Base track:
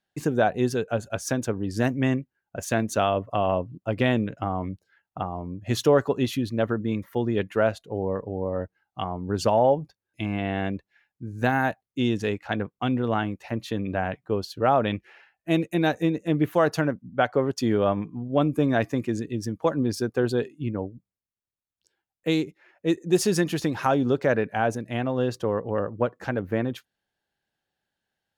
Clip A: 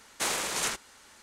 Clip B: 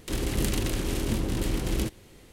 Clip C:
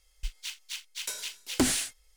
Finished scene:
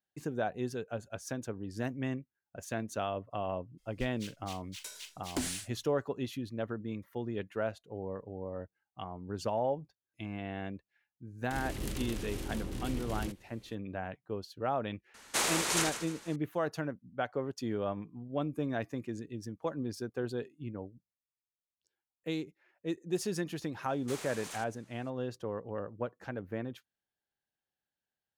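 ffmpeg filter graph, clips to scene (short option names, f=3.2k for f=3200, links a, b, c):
-filter_complex "[1:a]asplit=2[a][b];[0:a]volume=-12dB[c];[2:a]aeval=exprs='clip(val(0),-1,0.112)':c=same[d];[a]aecho=1:1:151|302|453|604:0.299|0.0985|0.0325|0.0107[e];[b]asoftclip=type=tanh:threshold=-25.5dB[f];[3:a]atrim=end=2.16,asetpts=PTS-STARTPTS,volume=-9.5dB,afade=t=in:d=0.02,afade=t=out:st=2.14:d=0.02,adelay=166257S[g];[d]atrim=end=2.32,asetpts=PTS-STARTPTS,volume=-10.5dB,afade=t=in:d=0.004:c=hsin,afade=t=out:st=2.316:d=0.004:c=hsin,adelay=11430[h];[e]atrim=end=1.22,asetpts=PTS-STARTPTS,volume=-0.5dB,afade=t=in:d=0.004:c=hsin,afade=t=out:st=1.216:d=0.004:c=hsin,adelay=15140[i];[f]atrim=end=1.22,asetpts=PTS-STARTPTS,volume=-13dB,afade=t=in:d=0.004:c=hsin,afade=t=out:st=1.216:d=0.004:c=hsin,adelay=23880[j];[c][g][h][i][j]amix=inputs=5:normalize=0"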